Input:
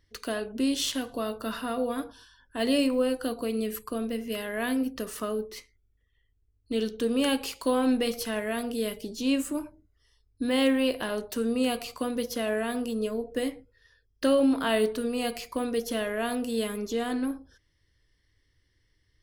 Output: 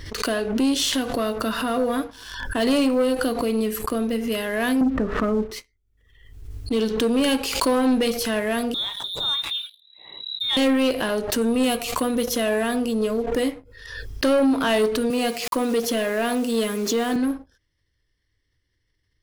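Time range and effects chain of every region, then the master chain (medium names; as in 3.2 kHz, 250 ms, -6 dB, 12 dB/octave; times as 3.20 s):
4.81–5.51 s: low-pass 1.8 kHz 24 dB/octave + bass shelf 250 Hz +10 dB + doubling 15 ms -12 dB
8.74–10.57 s: compression 1.5:1, threshold -40 dBFS + frequency inversion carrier 3.9 kHz
11.41–12.68 s: treble shelf 4.9 kHz +4.5 dB + band-stop 4.7 kHz, Q 6.1
15.10–17.16 s: high-pass 140 Hz 24 dB/octave + word length cut 8-bit, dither none
whole clip: treble shelf 12 kHz -3.5 dB; waveshaping leveller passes 2; swell ahead of each attack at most 55 dB/s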